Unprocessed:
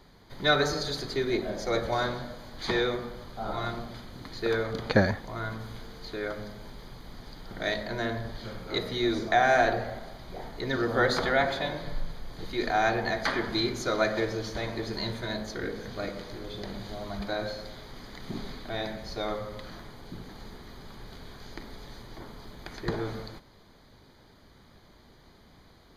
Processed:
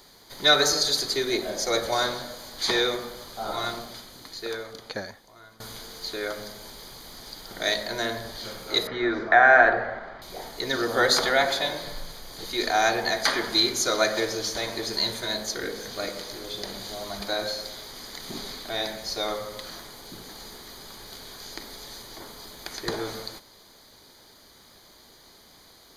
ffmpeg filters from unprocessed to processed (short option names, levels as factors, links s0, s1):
-filter_complex "[0:a]asettb=1/sr,asplit=3[s0][s1][s2];[s0]atrim=end=8.874[s3];[s1]atrim=start=8.87:end=10.22,asetpts=PTS-STARTPTS,afade=t=in:d=0.004:c=qsin,afade=t=out:st=1.346:d=0.004:c=qsin,lowpass=f=1600:t=q:w=2.4[s4];[s2]atrim=start=10.216[s5];[s3][s4]acrossfade=d=0.004:c1=hsin:c2=qsin[s6];[s6][s5]acrossfade=d=0.004:c1=qsin:c2=hsin,asplit=2[s7][s8];[s7]atrim=end=5.6,asetpts=PTS-STARTPTS,afade=t=out:st=3.72:d=1.88:c=qua:silence=0.125893[s9];[s8]atrim=start=5.6,asetpts=PTS-STARTPTS,afade=t=in:d=0.004:c=hsin:silence=0.125893[s10];[s9][s10]concat=n=2:v=0:a=1,bass=f=250:g=-10,treble=f=4000:g=14,volume=1.41"